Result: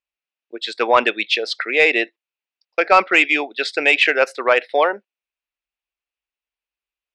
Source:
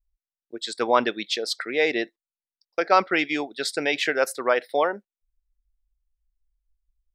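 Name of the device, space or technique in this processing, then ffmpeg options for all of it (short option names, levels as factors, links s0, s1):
intercom: -af "highpass=360,lowpass=3800,equalizer=f=2600:t=o:w=0.44:g=10,asoftclip=type=tanh:threshold=0.447,volume=2.11"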